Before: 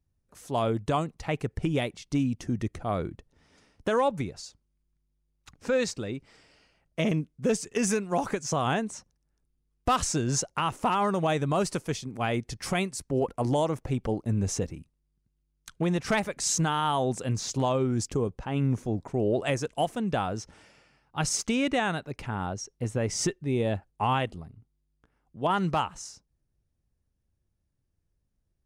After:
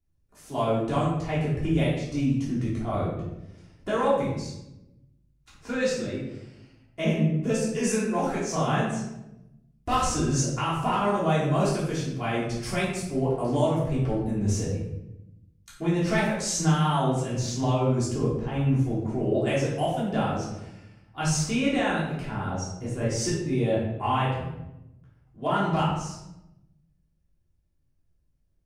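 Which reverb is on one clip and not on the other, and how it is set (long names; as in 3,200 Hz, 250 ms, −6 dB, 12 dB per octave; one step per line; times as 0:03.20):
rectangular room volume 310 cubic metres, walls mixed, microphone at 3.2 metres
level −8 dB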